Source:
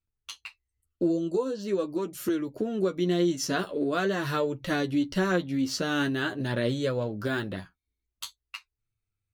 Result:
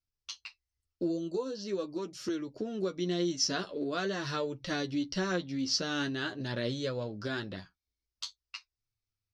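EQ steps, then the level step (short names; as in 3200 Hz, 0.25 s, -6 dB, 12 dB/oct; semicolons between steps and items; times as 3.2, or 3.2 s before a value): synth low-pass 5300 Hz, resonance Q 4.3; -6.5 dB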